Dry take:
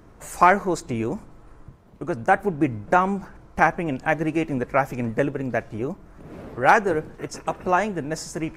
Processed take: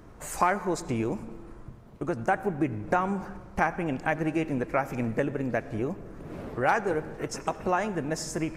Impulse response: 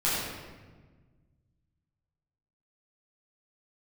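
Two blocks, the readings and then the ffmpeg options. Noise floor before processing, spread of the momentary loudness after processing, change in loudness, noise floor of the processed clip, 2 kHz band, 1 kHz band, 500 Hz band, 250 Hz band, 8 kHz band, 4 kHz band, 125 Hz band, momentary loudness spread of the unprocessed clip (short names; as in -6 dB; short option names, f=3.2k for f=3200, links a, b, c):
-49 dBFS, 12 LU, -6.5 dB, -48 dBFS, -7.0 dB, -7.5 dB, -5.0 dB, -4.0 dB, -1.5 dB, -3.5 dB, -3.5 dB, 16 LU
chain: -filter_complex "[0:a]acompressor=threshold=-27dB:ratio=2,asplit=2[a][b];[1:a]atrim=start_sample=2205,adelay=78[c];[b][c]afir=irnorm=-1:irlink=0,volume=-27.5dB[d];[a][d]amix=inputs=2:normalize=0"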